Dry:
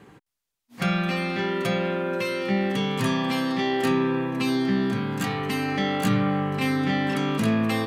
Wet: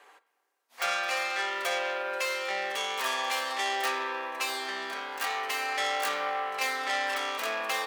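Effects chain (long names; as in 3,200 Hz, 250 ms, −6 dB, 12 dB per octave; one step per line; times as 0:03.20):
stylus tracing distortion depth 0.25 ms
high-pass filter 590 Hz 24 dB per octave
on a send: convolution reverb RT60 3.0 s, pre-delay 7 ms, DRR 13 dB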